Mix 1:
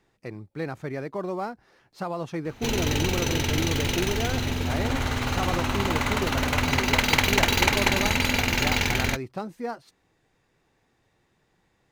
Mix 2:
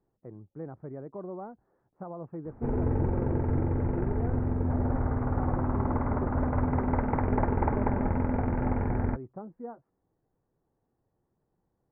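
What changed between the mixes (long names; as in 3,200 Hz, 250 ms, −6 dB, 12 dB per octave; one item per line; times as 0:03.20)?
speech −7.0 dB
master: add Gaussian smoothing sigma 7.9 samples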